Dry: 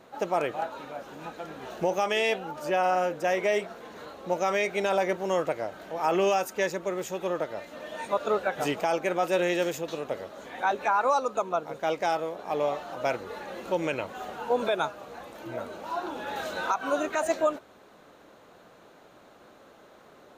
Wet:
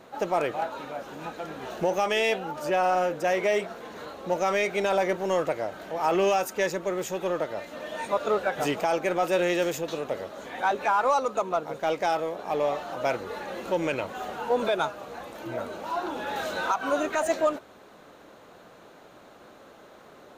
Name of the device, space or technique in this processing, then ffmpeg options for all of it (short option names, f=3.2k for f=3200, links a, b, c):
parallel distortion: -filter_complex "[0:a]asplit=2[a][b];[b]asoftclip=type=hard:threshold=-32.5dB,volume=-7dB[c];[a][c]amix=inputs=2:normalize=0"